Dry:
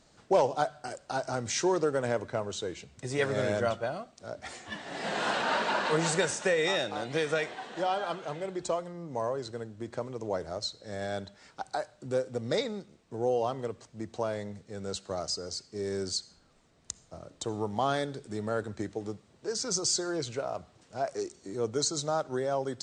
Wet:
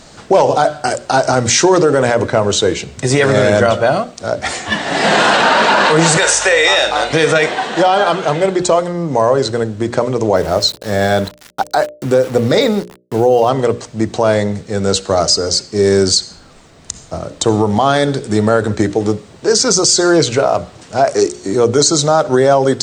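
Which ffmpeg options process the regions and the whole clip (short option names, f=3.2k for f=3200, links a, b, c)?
-filter_complex "[0:a]asettb=1/sr,asplit=3[a][b][c];[a]atrim=end=6.174[d];[b]atrim=start=6.17:end=7.13,asetpts=PTS-STARTPTS,afade=t=in:d=0.004:c=qsin,afade=t=out:st=0.956:d=0.004:c=qsin,highpass=610,asplit=2[e][f];[f]adelay=48,volume=-11.5dB[g];[e][g]amix=inputs=2:normalize=0,atrim=end_sample=42336,aeval=exprs='val(0)+0.001*(sin(2*PI*50*n/s)+sin(2*PI*2*50*n/s)/2+sin(2*PI*3*50*n/s)/3+sin(2*PI*4*50*n/s)/4+sin(2*PI*5*50*n/s)/5)':c=same[h];[c]atrim=start=7.126[i];[d][h]acrossfade=d=0.004:c1=hsin:c2=qsin[j];[j][i]acrossfade=d=0.004:c1=qsin:c2=hsin,asettb=1/sr,asplit=3[k][l][m];[k]atrim=end=10.364[n];[l]atrim=start=10.36:end=13.49,asetpts=PTS-STARTPTS,afade=t=in:d=0.004:c=qsin,afade=t=out:st=3.126:d=0.004:c=qsin,highshelf=f=5.6k:g=-5,aeval=exprs='val(0)*gte(abs(val(0)),0.00355)':c=same[o];[m]atrim=start=13.486[p];[n][o]acrossfade=d=0.004:c1=hsin:c2=qsin[q];[q][p]acrossfade=d=0.004:c1=qsin:c2=hsin,bandreject=f=60:t=h:w=6,bandreject=f=120:t=h:w=6,bandreject=f=180:t=h:w=6,bandreject=f=240:t=h:w=6,bandreject=f=300:t=h:w=6,bandreject=f=360:t=h:w=6,bandreject=f=420:t=h:w=6,bandreject=f=480:t=h:w=6,bandreject=f=540:t=h:w=6,bandreject=f=600:t=h:w=6,alimiter=level_in=23.5dB:limit=-1dB:release=50:level=0:latency=1,volume=-1dB"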